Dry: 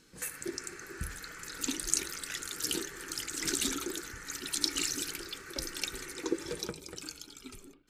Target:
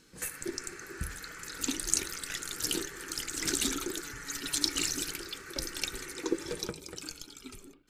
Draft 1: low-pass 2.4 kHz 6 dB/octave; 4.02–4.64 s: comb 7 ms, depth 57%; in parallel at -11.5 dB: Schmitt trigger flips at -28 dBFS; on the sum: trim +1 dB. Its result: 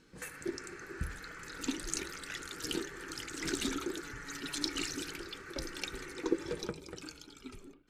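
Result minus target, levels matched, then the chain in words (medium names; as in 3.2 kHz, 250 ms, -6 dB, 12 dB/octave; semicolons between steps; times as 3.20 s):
2 kHz band +3.0 dB
4.02–4.64 s: comb 7 ms, depth 57%; in parallel at -11.5 dB: Schmitt trigger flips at -28 dBFS; on the sum: trim +1 dB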